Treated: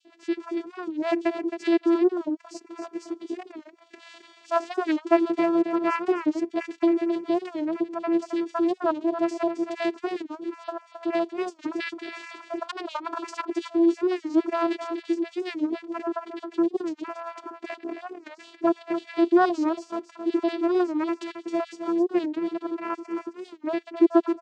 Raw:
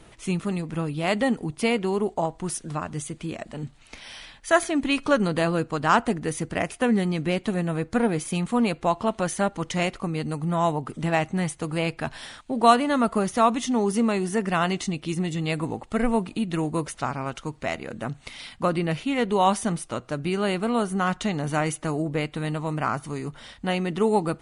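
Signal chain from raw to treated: random spectral dropouts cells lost 49%; 11.63–13.49 negative-ratio compressor -30 dBFS, ratio -0.5; vocoder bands 8, saw 336 Hz; on a send: echo 0.267 s -8.5 dB; on the sum: record warp 45 rpm, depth 160 cents; gain +3 dB

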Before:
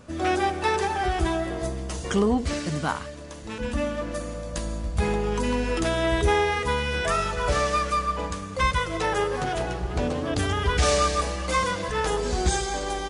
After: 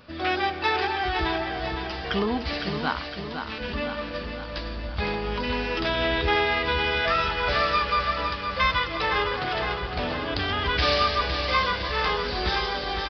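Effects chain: downsampling 11025 Hz; tilt shelf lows -5.5 dB, about 1100 Hz; on a send: feedback echo 0.51 s, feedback 58%, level -7 dB

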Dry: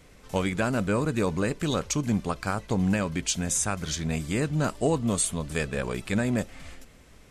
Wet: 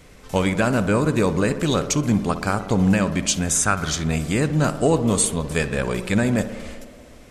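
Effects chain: 3.49–3.9 bell 1400 Hz +8 dB 0.51 oct; tape echo 62 ms, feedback 90%, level -11 dB, low-pass 1700 Hz; gain +6 dB

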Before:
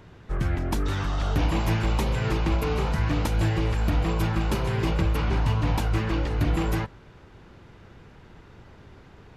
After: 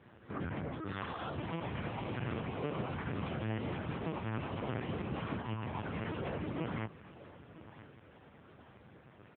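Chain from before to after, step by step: self-modulated delay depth 0.079 ms; low shelf 82 Hz -7.5 dB; limiter -23 dBFS, peak gain reduction 9 dB; flange 0.89 Hz, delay 7.8 ms, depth 5.2 ms, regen +32%; notches 50/100/150/200/250/300/350 Hz; feedback echo 0.982 s, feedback 20%, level -16.5 dB; LPC vocoder at 8 kHz pitch kept; AMR-NB 10.2 kbps 8000 Hz

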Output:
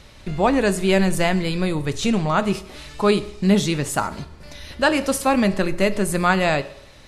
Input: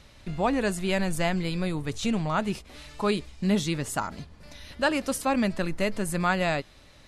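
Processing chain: bell 450 Hz +3.5 dB 0.24 oct; on a send: reverb RT60 0.70 s, pre-delay 3 ms, DRR 11.5 dB; on the sum: gain +6.5 dB

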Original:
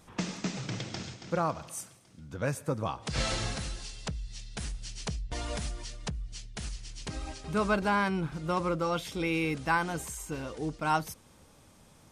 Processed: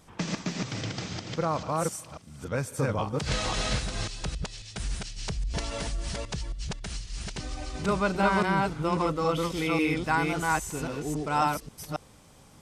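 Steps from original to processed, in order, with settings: reverse delay 0.261 s, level -0.5 dB; speed mistake 25 fps video run at 24 fps; gain +1 dB

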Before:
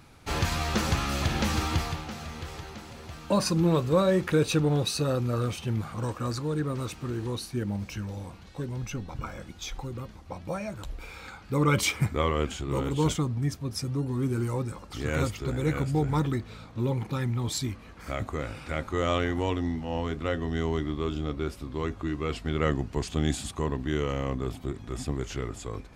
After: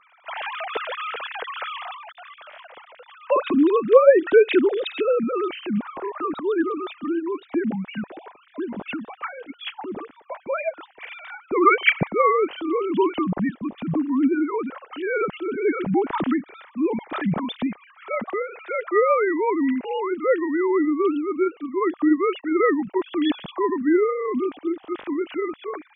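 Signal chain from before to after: sine-wave speech; gain +6 dB

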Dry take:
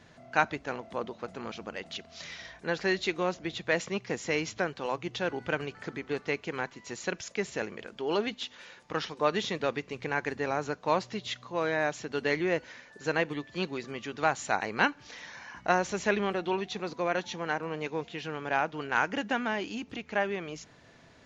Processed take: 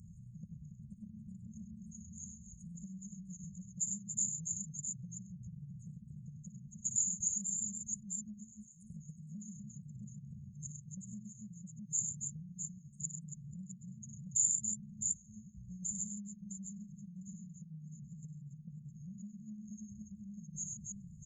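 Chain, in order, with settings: formant sharpening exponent 2; band shelf 4200 Hz -8.5 dB; on a send: tapped delay 58/99/132/282/660 ms -10/-6.5/-14/-8.5/-9 dB; on the sum: FFT band-reject 220–6400 Hz; compressor 6:1, threshold -51 dBFS, peak gain reduction 17 dB; resonant high shelf 5300 Hz +13.5 dB, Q 3; gain +5.5 dB

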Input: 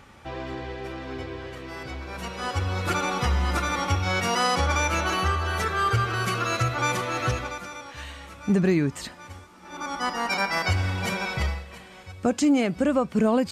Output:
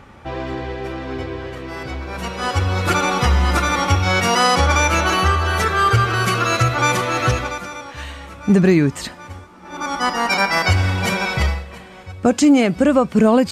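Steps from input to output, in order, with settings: mismatched tape noise reduction decoder only; gain +8 dB

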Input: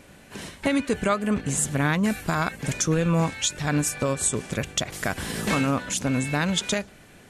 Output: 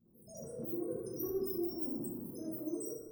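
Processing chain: tracing distortion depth 0.029 ms; Chebyshev band-stop 110–5500 Hz, order 2; low shelf 370 Hz -11.5 dB; thinning echo 0.179 s, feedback 56%, high-pass 200 Hz, level -16 dB; loudest bins only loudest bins 4; transient shaper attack -1 dB, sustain +11 dB; plate-style reverb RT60 3.5 s, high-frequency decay 0.3×, DRR -8 dB; speed mistake 33 rpm record played at 78 rpm; gain -6.5 dB

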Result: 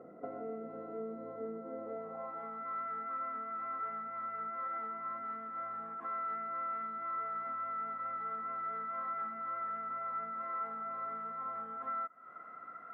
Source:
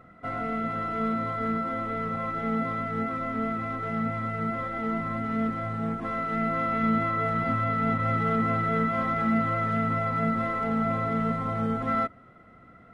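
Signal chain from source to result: compressor 12:1, threshold -40 dBFS, peak gain reduction 19.5 dB; HPF 150 Hz 12 dB/oct; bell 4000 Hz -14.5 dB 2.3 oct; band-pass sweep 450 Hz -> 1300 Hz, 1.75–2.68; high shelf 3100 Hz +9 dB; gain +11 dB

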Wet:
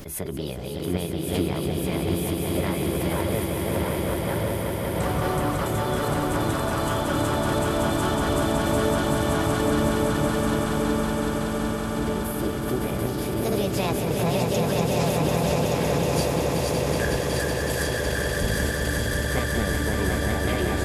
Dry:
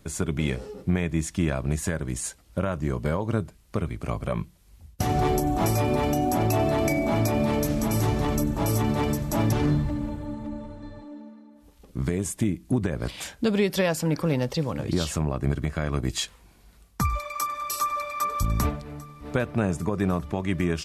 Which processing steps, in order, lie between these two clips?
regenerating reverse delay 0.587 s, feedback 75%, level -3 dB; formant shift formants +6 st; on a send: swelling echo 0.186 s, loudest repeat 5, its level -6 dB; on the sum: backwards sustainer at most 60 dB/s; gain -5.5 dB

